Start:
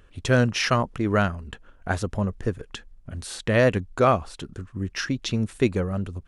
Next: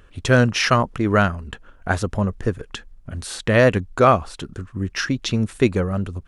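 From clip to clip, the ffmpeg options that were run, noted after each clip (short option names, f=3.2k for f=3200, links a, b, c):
-af "equalizer=f=1.3k:w=1.5:g=2,volume=4dB"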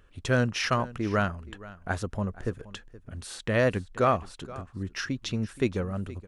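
-af "aecho=1:1:473:0.119,volume=-9dB"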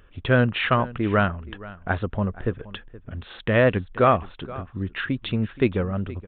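-af "aresample=8000,aresample=44100,volume=5.5dB"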